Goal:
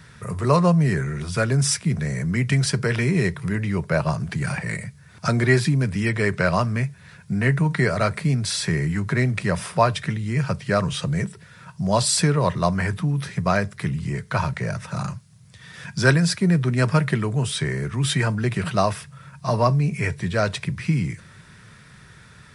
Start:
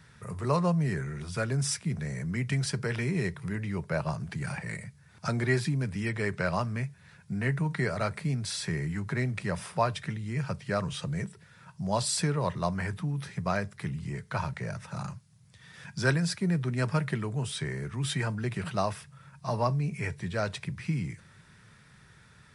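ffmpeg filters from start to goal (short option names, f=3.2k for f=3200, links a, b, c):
-af "bandreject=f=840:w=13,volume=9dB"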